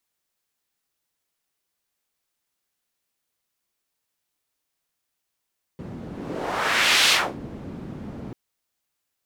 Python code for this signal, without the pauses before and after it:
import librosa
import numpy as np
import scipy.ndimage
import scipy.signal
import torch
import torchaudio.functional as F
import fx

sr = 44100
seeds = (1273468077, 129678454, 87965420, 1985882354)

y = fx.whoosh(sr, seeds[0], length_s=2.54, peak_s=1.31, rise_s=1.13, fall_s=0.29, ends_hz=210.0, peak_hz=3400.0, q=1.3, swell_db=18.5)